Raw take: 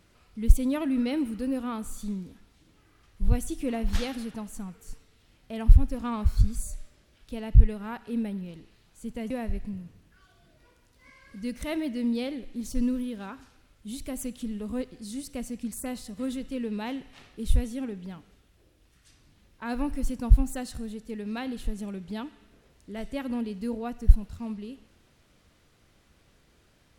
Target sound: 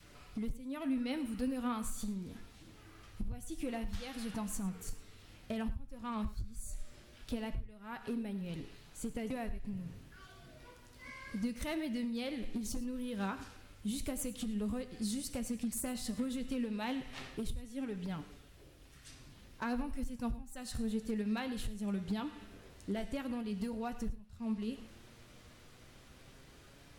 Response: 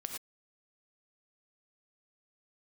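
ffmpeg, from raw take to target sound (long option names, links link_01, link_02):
-filter_complex "[0:a]adynamicequalizer=threshold=0.00794:dfrequency=360:dqfactor=0.85:tfrequency=360:tqfactor=0.85:attack=5:release=100:ratio=0.375:range=3.5:mode=cutabove:tftype=bell,acompressor=threshold=-39dB:ratio=12,volume=35.5dB,asoftclip=hard,volume=-35.5dB,flanger=delay=6.8:depth=3.7:regen=58:speed=0.11:shape=triangular,asplit=2[link_01][link_02];[1:a]atrim=start_sample=2205[link_03];[link_02][link_03]afir=irnorm=-1:irlink=0,volume=-8dB[link_04];[link_01][link_04]amix=inputs=2:normalize=0,volume=7dB"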